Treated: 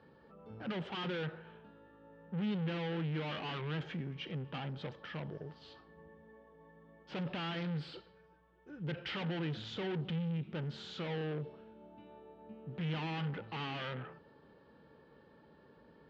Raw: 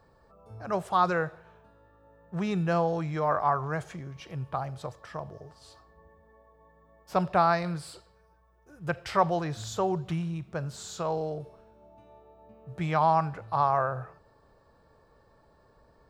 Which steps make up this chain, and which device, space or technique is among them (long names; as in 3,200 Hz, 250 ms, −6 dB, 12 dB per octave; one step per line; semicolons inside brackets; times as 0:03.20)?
guitar amplifier (tube saturation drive 39 dB, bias 0.3; bass and treble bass +6 dB, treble −8 dB; loudspeaker in its box 100–4,500 Hz, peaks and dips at 180 Hz −9 dB, 670 Hz −10 dB, 1,100 Hz −8 dB, 3,100 Hz +8 dB)
low shelf with overshoot 140 Hz −6.5 dB, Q 3
level +3 dB